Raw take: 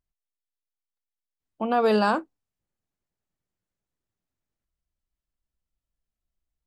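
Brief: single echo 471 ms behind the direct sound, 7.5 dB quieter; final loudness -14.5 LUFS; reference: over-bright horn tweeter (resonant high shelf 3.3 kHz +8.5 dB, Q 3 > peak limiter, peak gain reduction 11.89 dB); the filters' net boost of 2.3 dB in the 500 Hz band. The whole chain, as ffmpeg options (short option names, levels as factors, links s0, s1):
-af "equalizer=f=500:t=o:g=3,highshelf=f=3300:t=q:w=3:g=8.5,aecho=1:1:471:0.422,volume=5.31,alimiter=limit=0.596:level=0:latency=1"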